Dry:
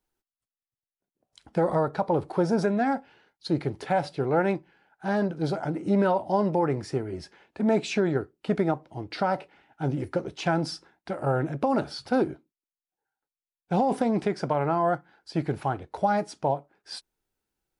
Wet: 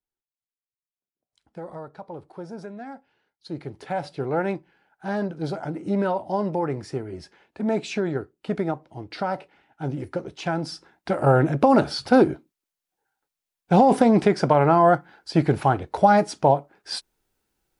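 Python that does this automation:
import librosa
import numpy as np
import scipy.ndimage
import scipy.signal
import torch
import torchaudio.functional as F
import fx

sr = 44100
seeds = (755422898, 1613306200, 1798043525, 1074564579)

y = fx.gain(x, sr, db=fx.line((2.96, -13.0), (4.16, -1.0), (10.68, -1.0), (11.11, 8.0)))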